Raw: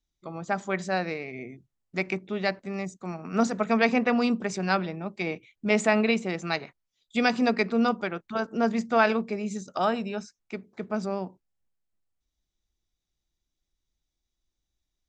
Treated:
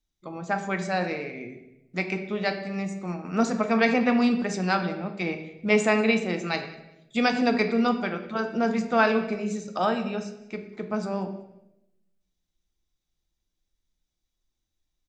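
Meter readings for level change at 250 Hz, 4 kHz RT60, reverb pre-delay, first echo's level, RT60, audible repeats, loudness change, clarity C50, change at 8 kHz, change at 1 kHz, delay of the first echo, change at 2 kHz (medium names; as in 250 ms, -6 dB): +2.0 dB, 0.75 s, 4 ms, -23.0 dB, 0.90 s, 1, +1.0 dB, 9.5 dB, +0.5 dB, +1.0 dB, 189 ms, +1.5 dB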